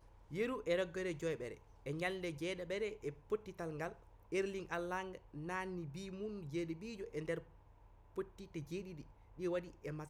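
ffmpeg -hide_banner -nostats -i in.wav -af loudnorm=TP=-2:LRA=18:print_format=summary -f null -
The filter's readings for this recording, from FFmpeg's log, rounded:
Input Integrated:    -43.2 LUFS
Input True Peak:     -24.5 dBTP
Input LRA:             4.9 LU
Input Threshold:     -53.6 LUFS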